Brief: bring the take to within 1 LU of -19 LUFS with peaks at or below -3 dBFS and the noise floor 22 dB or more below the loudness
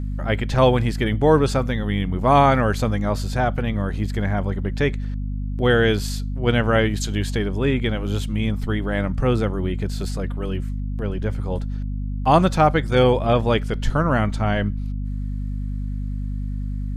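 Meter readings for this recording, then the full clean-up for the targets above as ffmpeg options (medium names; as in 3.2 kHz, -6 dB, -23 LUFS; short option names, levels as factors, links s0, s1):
hum 50 Hz; highest harmonic 250 Hz; hum level -24 dBFS; loudness -22.0 LUFS; peak level -2.5 dBFS; loudness target -19.0 LUFS
-> -af "bandreject=f=50:t=h:w=4,bandreject=f=100:t=h:w=4,bandreject=f=150:t=h:w=4,bandreject=f=200:t=h:w=4,bandreject=f=250:t=h:w=4"
-af "volume=1.41,alimiter=limit=0.708:level=0:latency=1"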